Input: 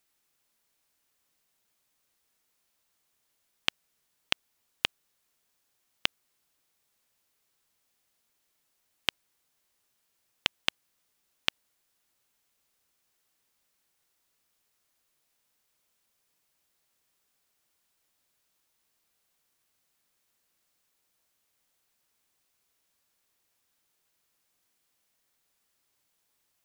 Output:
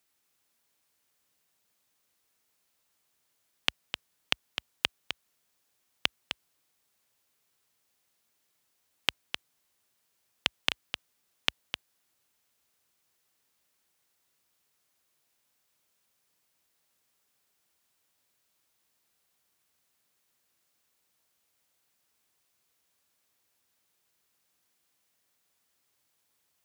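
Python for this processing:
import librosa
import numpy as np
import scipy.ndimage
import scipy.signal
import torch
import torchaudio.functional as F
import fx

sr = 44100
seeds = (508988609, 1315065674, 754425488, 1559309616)

y = scipy.signal.sosfilt(scipy.signal.butter(4, 55.0, 'highpass', fs=sr, output='sos'), x)
y = y + 10.0 ** (-8.0 / 20.0) * np.pad(y, (int(257 * sr / 1000.0), 0))[:len(y)]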